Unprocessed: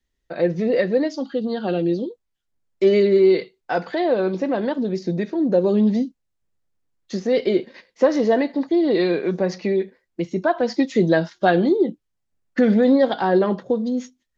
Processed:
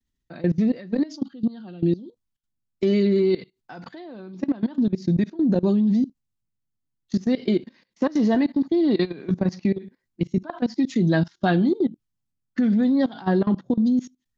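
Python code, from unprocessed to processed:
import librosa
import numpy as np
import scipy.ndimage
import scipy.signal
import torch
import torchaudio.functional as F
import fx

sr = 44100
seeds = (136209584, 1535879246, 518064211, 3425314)

y = fx.graphic_eq_10(x, sr, hz=(125, 250, 500, 2000), db=(7, 6, -11, -4))
y = fx.level_steps(y, sr, step_db=20)
y = F.gain(torch.from_numpy(y), 1.5).numpy()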